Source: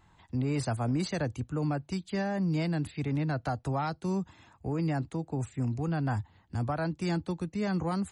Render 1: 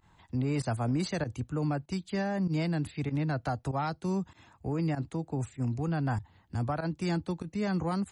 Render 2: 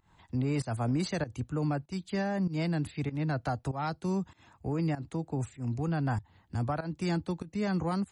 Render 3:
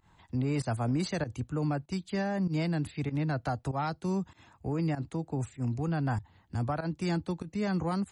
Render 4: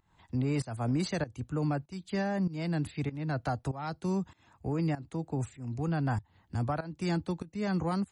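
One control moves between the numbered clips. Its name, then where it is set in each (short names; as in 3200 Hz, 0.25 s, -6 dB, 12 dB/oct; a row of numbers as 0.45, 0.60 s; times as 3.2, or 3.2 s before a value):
pump, release: 66, 183, 98, 364 ms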